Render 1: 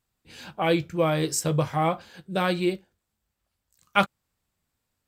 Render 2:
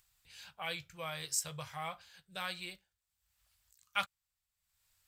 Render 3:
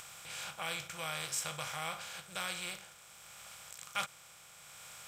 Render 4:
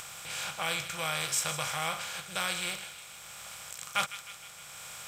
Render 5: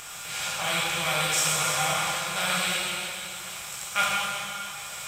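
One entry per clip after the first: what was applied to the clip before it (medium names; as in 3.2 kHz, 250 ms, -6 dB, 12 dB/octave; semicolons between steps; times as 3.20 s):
amplifier tone stack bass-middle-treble 10-0-10; upward compressor, threshold -55 dBFS; trim -5.5 dB
spectral levelling over time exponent 0.4; trim -4.5 dB
feedback echo behind a high-pass 155 ms, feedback 58%, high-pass 1.7 kHz, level -11 dB; trim +6.5 dB
plate-style reverb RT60 2.6 s, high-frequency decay 0.95×, DRR -6.5 dB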